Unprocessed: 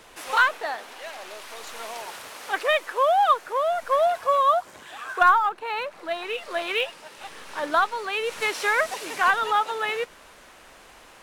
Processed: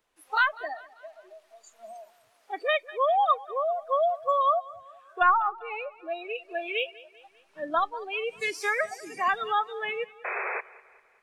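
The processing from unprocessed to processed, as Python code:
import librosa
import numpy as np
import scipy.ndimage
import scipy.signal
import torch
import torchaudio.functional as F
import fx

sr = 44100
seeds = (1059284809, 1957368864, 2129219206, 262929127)

y = fx.noise_reduce_blind(x, sr, reduce_db=23)
y = fx.spec_paint(y, sr, seeds[0], shape='noise', start_s=10.24, length_s=0.37, low_hz=360.0, high_hz=2600.0, level_db=-28.0)
y = fx.echo_feedback(y, sr, ms=197, feedback_pct=49, wet_db=-20.5)
y = F.gain(torch.from_numpy(y), -3.5).numpy()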